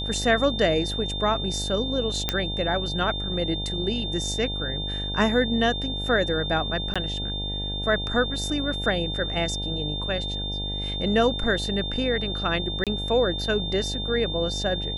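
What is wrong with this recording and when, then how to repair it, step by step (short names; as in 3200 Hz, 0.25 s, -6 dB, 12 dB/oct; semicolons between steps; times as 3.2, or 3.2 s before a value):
buzz 50 Hz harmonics 18 -32 dBFS
tone 3600 Hz -30 dBFS
2.29 pop -7 dBFS
6.94–6.96 gap 16 ms
12.84–12.87 gap 27 ms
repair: de-click; de-hum 50 Hz, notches 18; notch 3600 Hz, Q 30; interpolate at 6.94, 16 ms; interpolate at 12.84, 27 ms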